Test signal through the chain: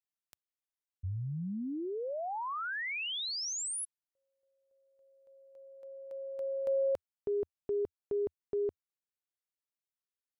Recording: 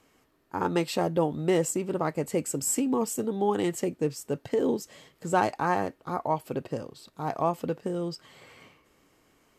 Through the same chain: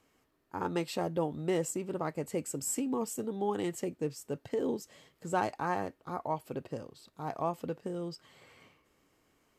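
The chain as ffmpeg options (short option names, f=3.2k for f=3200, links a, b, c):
-af "equalizer=f=84:t=o:w=0.49:g=2.5,volume=-6.5dB"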